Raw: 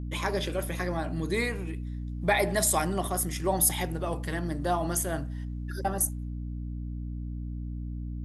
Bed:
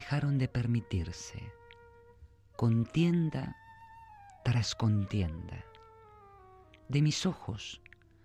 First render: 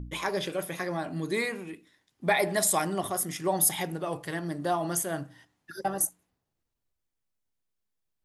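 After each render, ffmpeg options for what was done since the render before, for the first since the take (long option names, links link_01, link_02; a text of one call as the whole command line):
ffmpeg -i in.wav -af "bandreject=frequency=60:width_type=h:width=4,bandreject=frequency=120:width_type=h:width=4,bandreject=frequency=180:width_type=h:width=4,bandreject=frequency=240:width_type=h:width=4,bandreject=frequency=300:width_type=h:width=4" out.wav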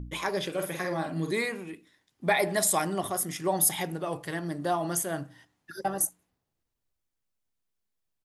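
ffmpeg -i in.wav -filter_complex "[0:a]asplit=3[link_01][link_02][link_03];[link_01]afade=type=out:start_time=0.54:duration=0.02[link_04];[link_02]asplit=2[link_05][link_06];[link_06]adelay=49,volume=-5dB[link_07];[link_05][link_07]amix=inputs=2:normalize=0,afade=type=in:start_time=0.54:duration=0.02,afade=type=out:start_time=1.32:duration=0.02[link_08];[link_03]afade=type=in:start_time=1.32:duration=0.02[link_09];[link_04][link_08][link_09]amix=inputs=3:normalize=0" out.wav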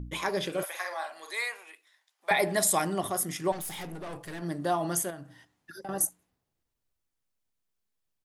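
ffmpeg -i in.wav -filter_complex "[0:a]asettb=1/sr,asplit=3[link_01][link_02][link_03];[link_01]atrim=end=0.634[link_04];[link_02]atrim=start=0.63:end=2.31,asetpts=PTS-STARTPTS,afade=type=in:duration=0.004:curve=qsin,afade=type=out:start_time=1.676:duration=0.004:curve=qsin,highpass=frequency=670:width=0.5412,highpass=frequency=670:width=1.3066[link_05];[link_03]atrim=start=2.306[link_06];[link_04][link_05]acrossfade=duration=0.004:curve1=hsin:curve2=qsin[link_07];[link_07][link_06]acrossfade=duration=0.004:curve1=qsin:curve2=hsin,asettb=1/sr,asplit=3[link_08][link_09][link_10];[link_08]atrim=end=3.524[link_11];[link_09]atrim=start=3.52:end=4.42,asetpts=PTS-STARTPTS,afade=type=in:duration=0.004:curve=qsin,afade=type=out:start_time=0.896:duration=0.004:curve=qsin,aeval=exprs='(tanh(63.1*val(0)+0.4)-tanh(0.4))/63.1':channel_layout=same[link_12];[link_10]atrim=start=4.416[link_13];[link_11][link_12]acrossfade=duration=0.004:curve1=hsin:curve2=qsin[link_14];[link_14][link_13]acrossfade=duration=0.004:curve1=qsin:curve2=hsin,asettb=1/sr,asplit=3[link_15][link_16][link_17];[link_15]atrim=end=5.104[link_18];[link_16]atrim=start=5.1:end=5.89,asetpts=PTS-STARTPTS,afade=type=in:duration=0.004:curve=qsin,afade=type=out:start_time=0.786:duration=0.004:curve=qsin,acompressor=threshold=-43dB:ratio=2.5:attack=3.2:release=140:knee=1:detection=peak[link_19];[link_17]atrim=start=5.886[link_20];[link_18][link_19]acrossfade=duration=0.004:curve1=hsin:curve2=qsin[link_21];[link_21][link_20]acrossfade=duration=0.004:curve1=qsin:curve2=hsin" out.wav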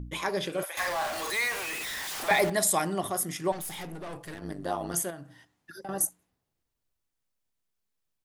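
ffmpeg -i in.wav -filter_complex "[0:a]asettb=1/sr,asplit=3[link_01][link_02][link_03];[link_01]atrim=end=0.774[link_04];[link_02]atrim=start=0.77:end=2.5,asetpts=PTS-STARTPTS,afade=type=in:duration=0.004:curve=qsin,afade=type=out:start_time=1.726:duration=0.004:curve=qsin,aeval=exprs='val(0)+0.5*0.0335*sgn(val(0))':channel_layout=same[link_05];[link_03]atrim=start=2.496[link_06];[link_04][link_05]acrossfade=duration=0.004:curve1=hsin:curve2=qsin[link_07];[link_07][link_06]acrossfade=duration=0.004:curve1=qsin:curve2=hsin,asettb=1/sr,asplit=3[link_08][link_09][link_10];[link_08]atrim=end=4.344[link_11];[link_09]atrim=start=4.34:end=4.94,asetpts=PTS-STARTPTS,afade=type=in:duration=0.004:curve=qsin,afade=type=out:start_time=0.596:duration=0.004:curve=qsin,tremolo=f=98:d=0.889[link_12];[link_10]atrim=start=4.936[link_13];[link_11][link_12]acrossfade=duration=0.004:curve1=hsin:curve2=qsin[link_14];[link_14][link_13]acrossfade=duration=0.004:curve1=qsin:curve2=hsin" out.wav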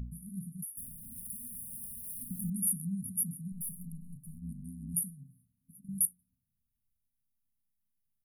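ffmpeg -i in.wav -af "afftfilt=real='re*(1-between(b*sr/4096,260,9200))':imag='im*(1-between(b*sr/4096,260,9200))':win_size=4096:overlap=0.75,adynamicequalizer=threshold=0.00112:dfrequency=120:dqfactor=3.6:tfrequency=120:tqfactor=3.6:attack=5:release=100:ratio=0.375:range=2.5:mode=cutabove:tftype=bell" out.wav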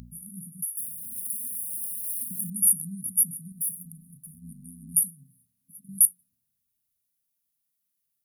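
ffmpeg -i in.wav -af "highpass=frequency=150:poles=1,highshelf=frequency=2900:gain=11" out.wav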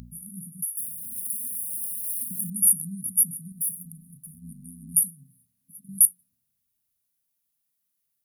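ffmpeg -i in.wav -af "volume=1.5dB" out.wav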